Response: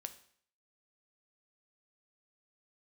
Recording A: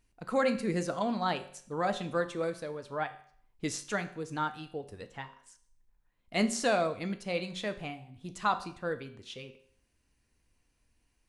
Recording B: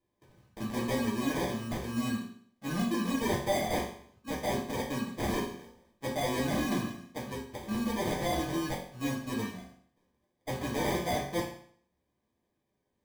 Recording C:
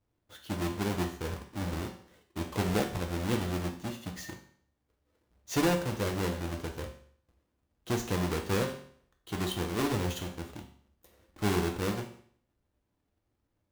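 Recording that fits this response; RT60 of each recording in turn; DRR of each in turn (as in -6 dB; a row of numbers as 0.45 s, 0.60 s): A; 0.55 s, 0.55 s, 0.55 s; 8.5 dB, -4.5 dB, 2.5 dB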